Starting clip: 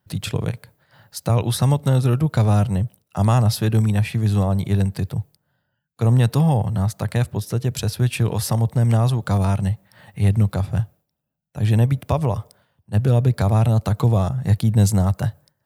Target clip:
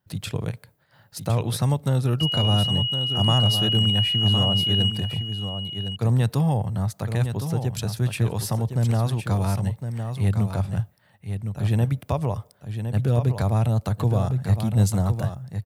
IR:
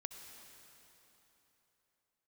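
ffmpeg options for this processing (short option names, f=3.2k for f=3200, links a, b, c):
-filter_complex "[0:a]asettb=1/sr,asplit=3[a][b][c];[a]atrim=end=2.204[d];[b]atrim=start=2.2:end=4.9,asetpts=PTS-STARTPTS,afade=t=in:d=0.004:c=qsin,afade=t=out:st=2.696:d=0.004:c=qsin,aeval=exprs='val(0)+0.112*sin(2*PI*2900*n/s)':c=same[e];[c]atrim=start=4.896[f];[d][e]acrossfade=d=0.004:c1=hsin:c2=qsin[g];[g][f]acrossfade=d=0.004:c1=qsin:c2=hsin,aecho=1:1:1061:0.398,volume=-4.5dB"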